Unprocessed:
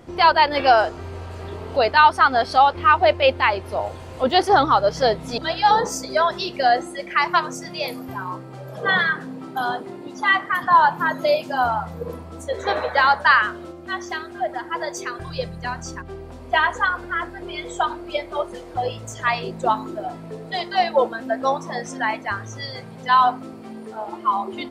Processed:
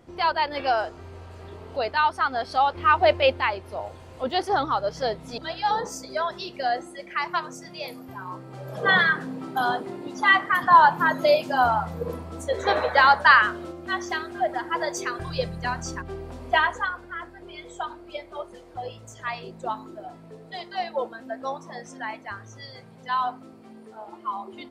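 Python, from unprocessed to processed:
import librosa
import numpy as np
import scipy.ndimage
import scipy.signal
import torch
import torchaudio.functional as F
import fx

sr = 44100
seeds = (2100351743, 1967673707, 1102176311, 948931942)

y = fx.gain(x, sr, db=fx.line((2.41, -8.5), (3.15, -1.5), (3.6, -8.0), (8.16, -8.0), (8.74, 0.0), (16.47, 0.0), (17.02, -10.0)))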